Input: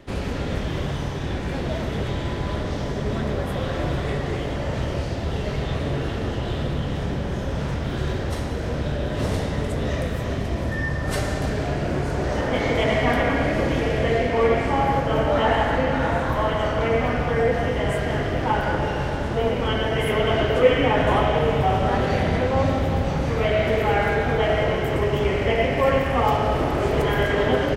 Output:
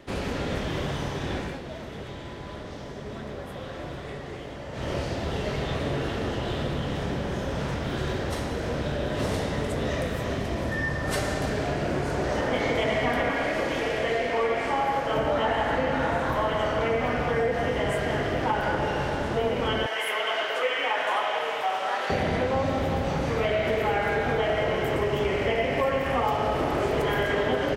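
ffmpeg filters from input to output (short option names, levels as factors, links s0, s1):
-filter_complex "[0:a]asettb=1/sr,asplit=3[s0][s1][s2];[s0]atrim=end=13.314[s3];[s1]atrim=start=13.31:end=15.16,asetpts=PTS-STARTPTS,afade=t=in:d=0.004:c=qsin,afade=t=out:st=1.846:d=0.004:c=qsin,equalizer=f=93:w=0.33:g=-9.5[s4];[s2]atrim=start=15.156[s5];[s3][s4]acrossfade=d=0.004:c1=hsin:c2=qsin[s6];[s6][s5]acrossfade=d=0.004:c1=qsin:c2=hsin,asettb=1/sr,asplit=3[s7][s8][s9];[s7]atrim=end=19.864[s10];[s8]atrim=start=19.86:end=22.1,asetpts=PTS-STARTPTS,afade=t=in:d=0.004:c=qsin,afade=t=out:st=2.236:d=0.004:c=qsin,highpass=830[s11];[s9]atrim=start=22.096[s12];[s10][s11]acrossfade=d=0.004:c1=hsin:c2=qsin[s13];[s13][s12]acrossfade=d=0.004:c1=qsin:c2=hsin,asplit=3[s14][s15][s16];[s14]atrim=end=1.59,asetpts=PTS-STARTPTS,afade=t=out:st=1.39:d=0.2:silence=0.354813[s17];[s15]atrim=start=1.59:end=4.72,asetpts=PTS-STARTPTS,volume=0.355[s18];[s16]atrim=start=4.72,asetpts=PTS-STARTPTS,afade=t=in:d=0.2:silence=0.354813[s19];[s17][s18][s19]concat=n=3:v=0:a=1,lowshelf=f=150:g=-8,acompressor=threshold=0.0891:ratio=6"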